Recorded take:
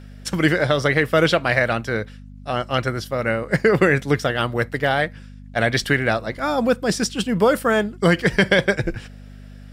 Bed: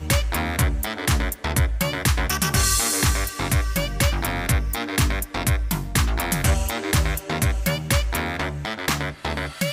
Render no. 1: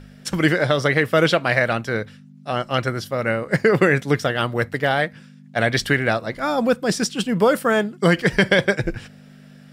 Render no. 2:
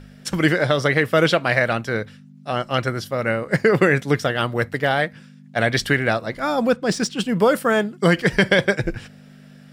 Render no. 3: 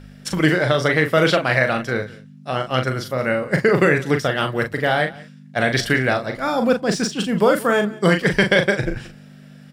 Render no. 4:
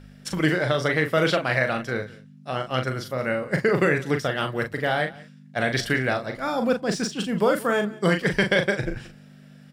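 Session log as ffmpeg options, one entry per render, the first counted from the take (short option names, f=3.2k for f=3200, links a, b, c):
-af "bandreject=f=50:t=h:w=4,bandreject=f=100:t=h:w=4"
-filter_complex "[0:a]asettb=1/sr,asplit=3[a][b][c];[a]atrim=end=6.724[d];[b]atrim=start=6.72:end=7.22,asetpts=PTS-STARTPTS,afade=t=in:d=0.004:c=qsin,afade=t=out:st=0.496:d=0.004:c=qsin,adynamicsmooth=sensitivity=5.5:basefreq=6.5k[e];[c]atrim=start=7.216[f];[d][e]acrossfade=d=0.004:c1=hsin:c2=qsin[g];[g][f]acrossfade=d=0.004:c1=qsin:c2=hsin"
-filter_complex "[0:a]asplit=2[a][b];[b]adelay=39,volume=-6.5dB[c];[a][c]amix=inputs=2:normalize=0,aecho=1:1:179:0.0841"
-af "volume=-5dB"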